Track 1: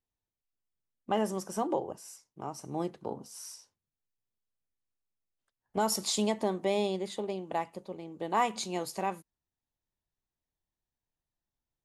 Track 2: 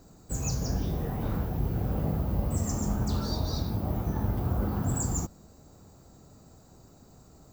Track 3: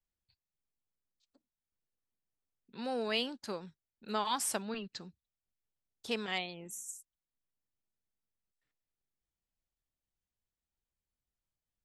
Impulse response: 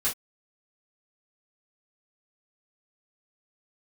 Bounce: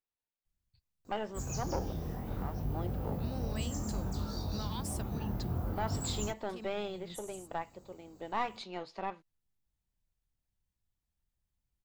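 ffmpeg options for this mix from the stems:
-filter_complex "[0:a]lowpass=f=4200:w=0.5412,lowpass=f=4200:w=1.3066,lowshelf=f=270:g=-10.5,aeval=exprs='(tanh(15.8*val(0)+0.6)-tanh(0.6))/15.8':c=same,volume=0.891,asplit=2[s0][s1];[1:a]flanger=delay=20:depth=6:speed=0.6,adelay=1050,volume=0.596[s2];[2:a]bass=f=250:g=15,treble=f=4000:g=4,acompressor=threshold=0.0141:ratio=4,adelay=450,volume=0.631[s3];[s1]apad=whole_len=542066[s4];[s3][s4]sidechaincompress=threshold=0.00398:ratio=8:attack=48:release=122[s5];[s0][s2][s5]amix=inputs=3:normalize=0"

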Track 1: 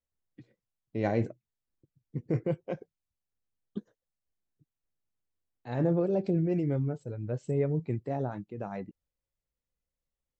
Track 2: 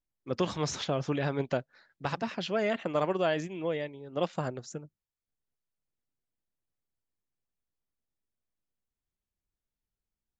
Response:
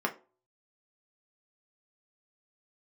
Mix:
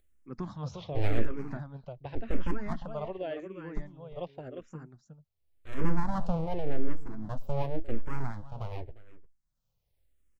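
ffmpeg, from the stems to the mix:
-filter_complex "[0:a]aeval=exprs='abs(val(0))':c=same,volume=1,asplit=2[s0][s1];[s1]volume=0.133[s2];[1:a]aemphasis=mode=reproduction:type=75fm,volume=0.376,asplit=2[s3][s4];[s4]volume=0.531[s5];[s2][s5]amix=inputs=2:normalize=0,aecho=0:1:352:1[s6];[s0][s3][s6]amix=inputs=3:normalize=0,lowshelf=f=140:g=12,acompressor=mode=upward:threshold=0.00158:ratio=2.5,asplit=2[s7][s8];[s8]afreqshift=-0.89[s9];[s7][s9]amix=inputs=2:normalize=1"

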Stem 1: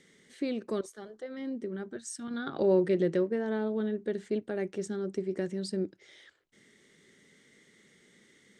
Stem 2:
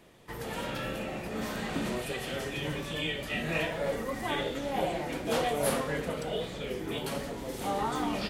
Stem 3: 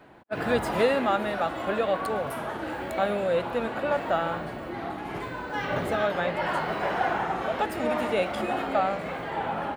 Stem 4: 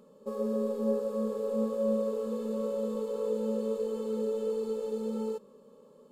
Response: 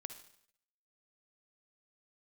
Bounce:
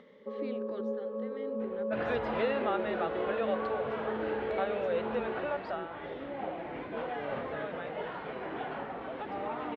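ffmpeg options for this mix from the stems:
-filter_complex "[0:a]volume=0.596,asplit=2[s0][s1];[1:a]adelay=1650,volume=0.596[s2];[2:a]adelay=1600,afade=t=out:st=5.4:d=0.5:silence=0.281838[s3];[3:a]volume=0.841[s4];[s1]apad=whole_len=438580[s5];[s2][s5]sidechaincompress=threshold=0.00355:ratio=8:attack=16:release=250[s6];[s6][s4]amix=inputs=2:normalize=0,highpass=190,lowpass=2000,acompressor=threshold=0.0126:ratio=1.5,volume=1[s7];[s0][s3]amix=inputs=2:normalize=0,equalizer=f=200:w=2:g=-9,acompressor=threshold=0.00891:ratio=1.5,volume=1[s8];[s7][s8]amix=inputs=2:normalize=0,lowpass=f=3600:w=0.5412,lowpass=f=3600:w=1.3066,acompressor=mode=upward:threshold=0.00224:ratio=2.5"

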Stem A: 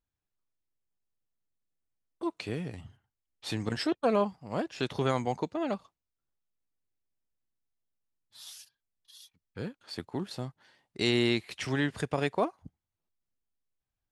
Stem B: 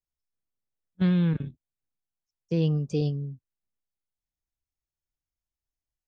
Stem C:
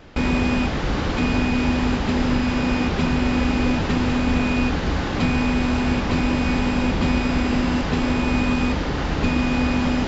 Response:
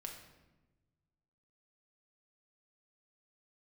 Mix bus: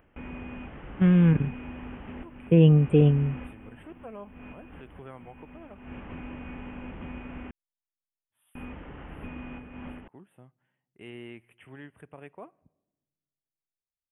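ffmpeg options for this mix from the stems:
-filter_complex "[0:a]volume=0.141,asplit=3[s0][s1][s2];[s1]volume=0.141[s3];[1:a]dynaudnorm=f=460:g=5:m=4.47,volume=0.631[s4];[2:a]acompressor=mode=upward:threshold=0.0112:ratio=2.5,volume=0.106,asplit=3[s5][s6][s7];[s5]atrim=end=7.51,asetpts=PTS-STARTPTS,afade=t=out:st=7.506:d=0.004:c=hsin[s8];[s6]atrim=start=7.51:end=8.55,asetpts=PTS-STARTPTS,volume=0[s9];[s7]atrim=start=8.55,asetpts=PTS-STARTPTS,afade=t=in:d=0.004:c=hsin[s10];[s8][s9][s10]concat=n=3:v=0:a=1[s11];[s2]apad=whole_len=444477[s12];[s11][s12]sidechaincompress=threshold=0.00126:ratio=6:attack=36:release=220[s13];[3:a]atrim=start_sample=2205[s14];[s3][s14]afir=irnorm=-1:irlink=0[s15];[s0][s4][s13][s15]amix=inputs=4:normalize=0,asuperstop=centerf=5300:order=12:qfactor=0.94"

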